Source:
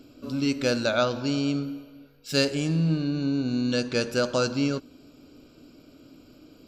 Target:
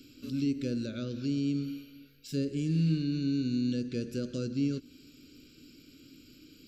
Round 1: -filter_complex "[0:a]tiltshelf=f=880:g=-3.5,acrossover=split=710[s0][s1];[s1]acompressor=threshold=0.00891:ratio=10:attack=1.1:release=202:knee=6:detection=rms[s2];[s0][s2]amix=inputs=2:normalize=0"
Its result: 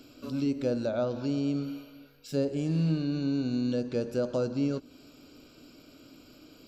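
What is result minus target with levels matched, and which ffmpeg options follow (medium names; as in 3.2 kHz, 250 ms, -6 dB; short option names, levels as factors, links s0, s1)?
1 kHz band +13.5 dB
-filter_complex "[0:a]asuperstop=centerf=820:order=4:qfactor=0.55,tiltshelf=f=880:g=-3.5,acrossover=split=710[s0][s1];[s1]acompressor=threshold=0.00891:ratio=10:attack=1.1:release=202:knee=6:detection=rms[s2];[s0][s2]amix=inputs=2:normalize=0"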